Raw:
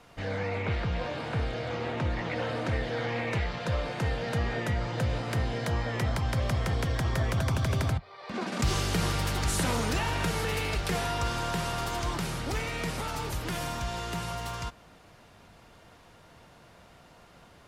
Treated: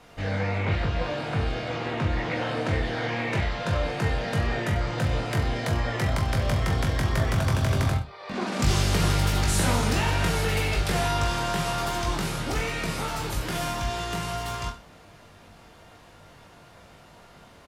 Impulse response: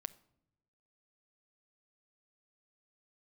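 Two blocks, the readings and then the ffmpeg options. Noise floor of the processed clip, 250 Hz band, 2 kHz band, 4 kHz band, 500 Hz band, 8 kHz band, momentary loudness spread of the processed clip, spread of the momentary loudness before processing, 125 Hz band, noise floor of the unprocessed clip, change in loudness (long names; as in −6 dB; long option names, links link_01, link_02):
−51 dBFS, +4.0 dB, +4.0 dB, +4.0 dB, +3.5 dB, +4.0 dB, 7 LU, 6 LU, +4.5 dB, −55 dBFS, +4.0 dB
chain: -af "aecho=1:1:20|42|66.2|92.82|122.1:0.631|0.398|0.251|0.158|0.1,volume=2dB"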